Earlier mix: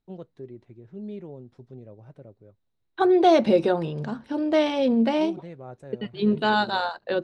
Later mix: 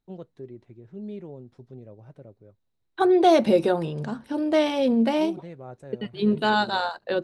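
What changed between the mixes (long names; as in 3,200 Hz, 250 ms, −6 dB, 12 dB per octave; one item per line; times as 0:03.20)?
first voice: add low-pass filter 6,900 Hz
master: remove low-pass filter 6,000 Hz 12 dB per octave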